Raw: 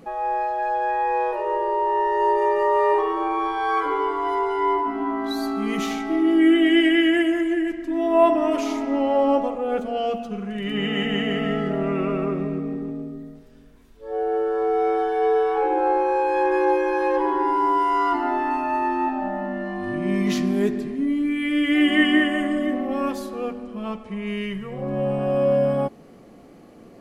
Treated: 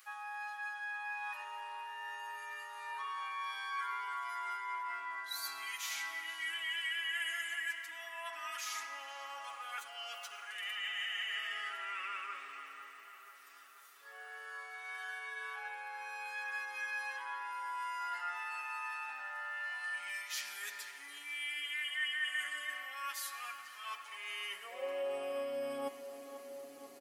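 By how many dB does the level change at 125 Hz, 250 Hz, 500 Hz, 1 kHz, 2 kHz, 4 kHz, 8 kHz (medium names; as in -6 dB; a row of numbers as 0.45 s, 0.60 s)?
under -40 dB, under -35 dB, -25.0 dB, -19.5 dB, -8.5 dB, -9.0 dB, no reading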